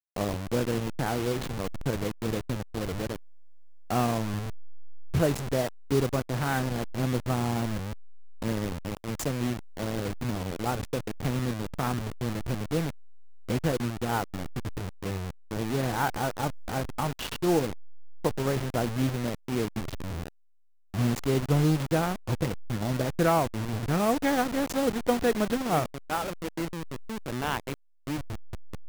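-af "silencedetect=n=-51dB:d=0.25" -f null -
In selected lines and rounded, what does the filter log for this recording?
silence_start: 20.28
silence_end: 20.94 | silence_duration: 0.66
silence_start: 27.74
silence_end: 28.07 | silence_duration: 0.33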